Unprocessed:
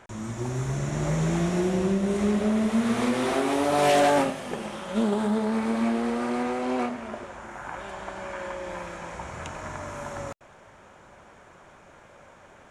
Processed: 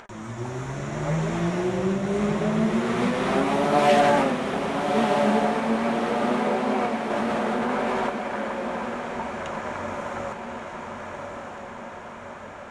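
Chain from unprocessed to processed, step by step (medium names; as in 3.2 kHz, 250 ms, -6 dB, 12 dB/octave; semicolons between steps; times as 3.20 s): low-pass 2.5 kHz 6 dB/octave; bass shelf 410 Hz -7.5 dB; upward compressor, threshold -45 dBFS; flange 0.75 Hz, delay 4.1 ms, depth 7.8 ms, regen +55%; echo that smears into a reverb 1219 ms, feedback 60%, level -4.5 dB; 7.10–8.10 s: level flattener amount 100%; trim +8.5 dB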